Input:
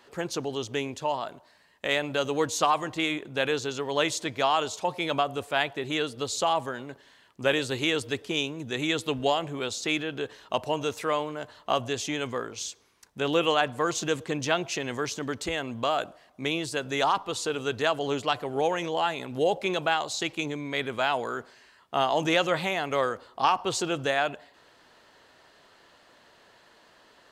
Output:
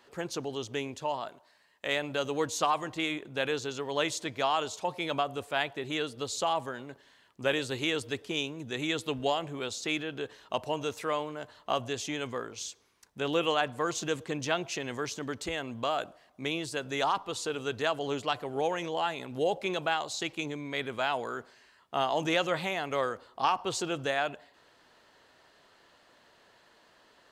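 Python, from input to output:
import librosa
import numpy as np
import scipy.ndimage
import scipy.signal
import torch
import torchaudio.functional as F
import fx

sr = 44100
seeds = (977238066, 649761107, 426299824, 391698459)

y = fx.low_shelf(x, sr, hz=260.0, db=-9.0, at=(1.29, 1.87))
y = y * librosa.db_to_amplitude(-4.0)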